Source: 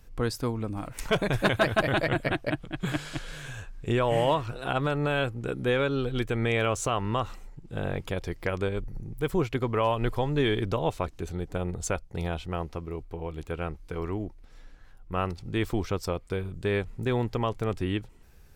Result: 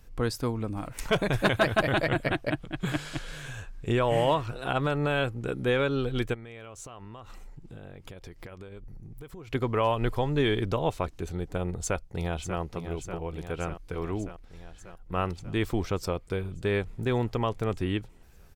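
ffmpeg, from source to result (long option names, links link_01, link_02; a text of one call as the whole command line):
ffmpeg -i in.wav -filter_complex "[0:a]asplit=3[link_01][link_02][link_03];[link_01]afade=type=out:start_time=6.33:duration=0.02[link_04];[link_02]acompressor=threshold=-39dB:ratio=16:attack=3.2:release=140:knee=1:detection=peak,afade=type=in:start_time=6.33:duration=0.02,afade=type=out:start_time=9.47:duration=0.02[link_05];[link_03]afade=type=in:start_time=9.47:duration=0.02[link_06];[link_04][link_05][link_06]amix=inputs=3:normalize=0,asplit=2[link_07][link_08];[link_08]afade=type=in:start_time=11.78:duration=0.01,afade=type=out:start_time=12.59:duration=0.01,aecho=0:1:590|1180|1770|2360|2950|3540|4130|4720|5310|5900|6490:0.354813|0.248369|0.173859|0.121701|0.0851907|0.0596335|0.0417434|0.0292204|0.0204543|0.014318|0.0100226[link_09];[link_07][link_09]amix=inputs=2:normalize=0" out.wav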